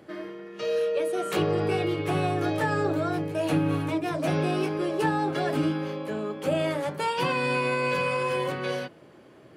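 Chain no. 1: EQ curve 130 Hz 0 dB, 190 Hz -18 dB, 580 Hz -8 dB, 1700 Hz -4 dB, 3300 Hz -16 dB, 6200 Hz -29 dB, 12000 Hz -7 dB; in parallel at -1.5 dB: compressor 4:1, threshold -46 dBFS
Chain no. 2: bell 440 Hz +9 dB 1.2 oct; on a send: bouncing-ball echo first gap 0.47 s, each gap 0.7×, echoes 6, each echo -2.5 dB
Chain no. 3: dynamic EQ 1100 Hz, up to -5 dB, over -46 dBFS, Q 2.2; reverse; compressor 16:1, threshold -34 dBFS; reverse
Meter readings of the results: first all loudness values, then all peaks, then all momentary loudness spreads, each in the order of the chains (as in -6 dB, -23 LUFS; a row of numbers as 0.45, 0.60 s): -33.5, -18.5, -38.0 LUFS; -18.5, -4.5, -26.0 dBFS; 7, 4, 3 LU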